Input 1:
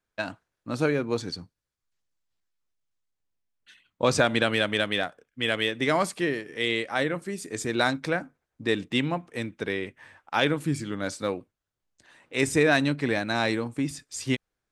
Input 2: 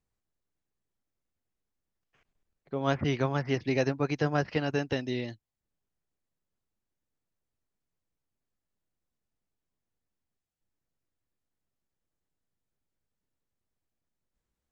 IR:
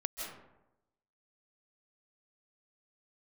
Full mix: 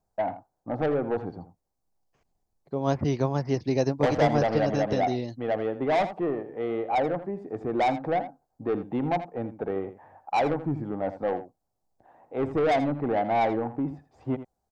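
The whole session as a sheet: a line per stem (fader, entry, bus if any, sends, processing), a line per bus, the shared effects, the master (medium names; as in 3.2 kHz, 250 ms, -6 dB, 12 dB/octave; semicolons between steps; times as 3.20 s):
-0.5 dB, 0.00 s, no send, echo send -12.5 dB, resonant low-pass 770 Hz, resonance Q 6.1; saturation -19.5 dBFS, distortion -8 dB
+3.0 dB, 0.00 s, no send, no echo send, high-order bell 2.1 kHz -10 dB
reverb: none
echo: delay 82 ms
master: none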